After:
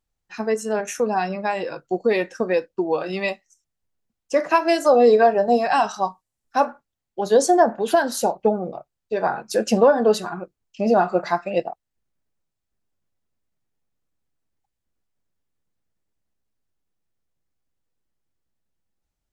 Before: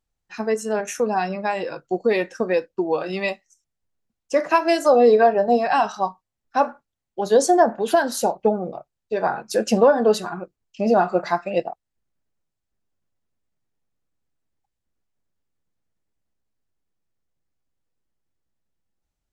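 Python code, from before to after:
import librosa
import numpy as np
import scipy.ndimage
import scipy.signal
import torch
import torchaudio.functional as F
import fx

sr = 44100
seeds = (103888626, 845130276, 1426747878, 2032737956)

y = fx.peak_eq(x, sr, hz=9200.0, db=8.5, octaves=1.2, at=(5.0, 6.65))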